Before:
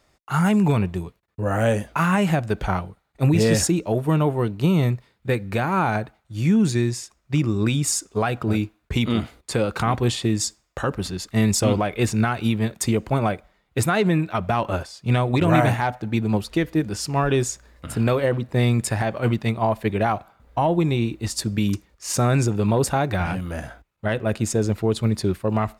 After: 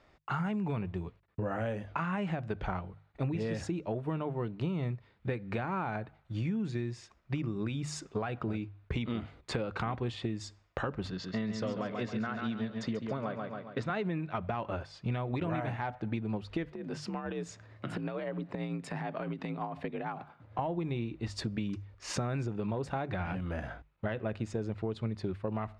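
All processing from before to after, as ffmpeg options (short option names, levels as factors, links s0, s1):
-filter_complex "[0:a]asettb=1/sr,asplit=3[s0][s1][s2];[s0]atrim=end=11.104[s3];[s1]atrim=start=11.1:end=13.9,asetpts=PTS-STARTPTS,afade=t=in:d=0.004:c=qsin,afade=t=out:st=2.796:d=0.004:c=qsin,highpass=180,equalizer=f=350:t=q:w=4:g=-9,equalizer=f=820:t=q:w=4:g=-9,equalizer=f=2400:t=q:w=4:g=-9,lowpass=f=6100:w=0.5412,lowpass=f=6100:w=1.3066,aecho=1:1:138|276|414|552|690:0.447|0.179|0.0715|0.0286|0.0114,atrim=end_sample=123480[s4];[s2]atrim=start=13.896[s5];[s3][s4]acrossfade=d=0.004:c1=hsin:c2=qsin[s6];[s6][s5]acrossfade=d=0.004:c1=qsin:c2=hsin,asettb=1/sr,asplit=3[s7][s8][s9];[s7]atrim=end=16.724[s10];[s8]atrim=start=16.72:end=20.59,asetpts=PTS-STARTPTS,afade=t=in:d=0.004:c=qsin,afade=t=out:st=3.866:d=0.004:c=qsin,afreqshift=50,acompressor=threshold=0.0398:ratio=12:attack=3.2:release=140:knee=1:detection=peak,tremolo=f=8.9:d=0.45[s11];[s9]atrim=start=20.586[s12];[s10][s11]acrossfade=d=0.004:c1=hsin:c2=qsin[s13];[s13][s12]acrossfade=d=0.004:c1=qsin:c2=hsin,lowpass=3200,bandreject=f=50:t=h:w=6,bandreject=f=100:t=h:w=6,bandreject=f=150:t=h:w=6,acompressor=threshold=0.0251:ratio=6"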